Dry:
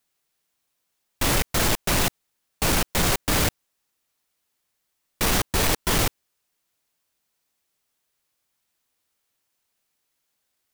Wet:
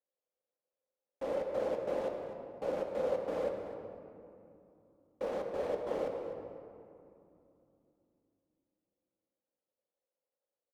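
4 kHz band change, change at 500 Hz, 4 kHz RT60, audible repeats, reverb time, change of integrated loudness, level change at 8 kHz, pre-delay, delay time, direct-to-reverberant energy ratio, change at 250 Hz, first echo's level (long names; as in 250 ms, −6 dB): −31.0 dB, −2.0 dB, 1.3 s, 1, 2.8 s, −14.0 dB, below −35 dB, 3 ms, 251 ms, 1.5 dB, −15.0 dB, −13.0 dB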